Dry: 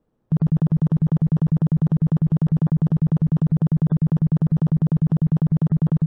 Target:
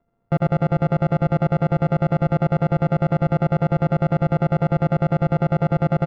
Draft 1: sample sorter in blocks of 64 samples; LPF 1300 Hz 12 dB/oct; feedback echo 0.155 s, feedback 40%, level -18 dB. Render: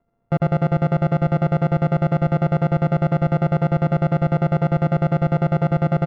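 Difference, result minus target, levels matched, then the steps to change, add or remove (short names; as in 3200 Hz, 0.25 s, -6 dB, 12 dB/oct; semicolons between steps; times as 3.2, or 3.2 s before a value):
echo 70 ms late
change: feedback echo 85 ms, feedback 40%, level -18 dB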